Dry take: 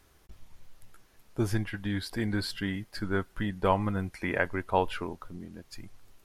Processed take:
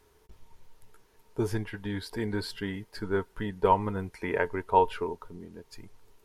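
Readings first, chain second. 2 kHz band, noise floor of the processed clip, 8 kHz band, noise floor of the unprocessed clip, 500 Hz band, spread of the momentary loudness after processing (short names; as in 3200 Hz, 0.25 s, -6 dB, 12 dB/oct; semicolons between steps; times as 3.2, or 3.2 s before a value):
-3.0 dB, -64 dBFS, -3.0 dB, -62 dBFS, +3.0 dB, 16 LU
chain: small resonant body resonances 430/920 Hz, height 14 dB, ringing for 65 ms; gain -3 dB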